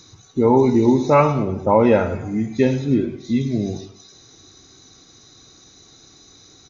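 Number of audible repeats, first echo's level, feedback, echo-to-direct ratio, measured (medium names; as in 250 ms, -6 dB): 3, -14.5 dB, 38%, -14.0 dB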